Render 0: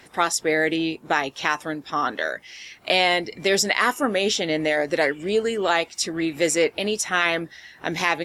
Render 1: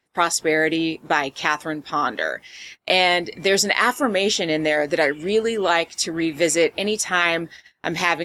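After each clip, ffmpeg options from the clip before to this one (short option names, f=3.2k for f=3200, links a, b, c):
-af "agate=range=-26dB:threshold=-41dB:ratio=16:detection=peak,volume=2dB"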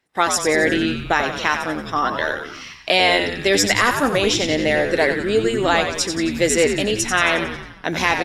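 -filter_complex "[0:a]asplit=8[a][b][c][d][e][f][g][h];[b]adelay=90,afreqshift=-95,volume=-7dB[i];[c]adelay=180,afreqshift=-190,volume=-12.2dB[j];[d]adelay=270,afreqshift=-285,volume=-17.4dB[k];[e]adelay=360,afreqshift=-380,volume=-22.6dB[l];[f]adelay=450,afreqshift=-475,volume=-27.8dB[m];[g]adelay=540,afreqshift=-570,volume=-33dB[n];[h]adelay=630,afreqshift=-665,volume=-38.2dB[o];[a][i][j][k][l][m][n][o]amix=inputs=8:normalize=0,volume=1dB"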